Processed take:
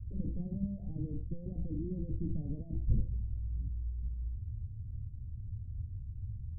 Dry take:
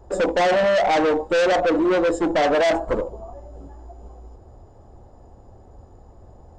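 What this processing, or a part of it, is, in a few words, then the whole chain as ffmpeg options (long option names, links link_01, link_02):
the neighbour's flat through the wall: -af "lowpass=frequency=160:width=0.5412,lowpass=frequency=160:width=1.3066,equalizer=frequency=100:width_type=o:width=0.83:gain=7.5,volume=3dB"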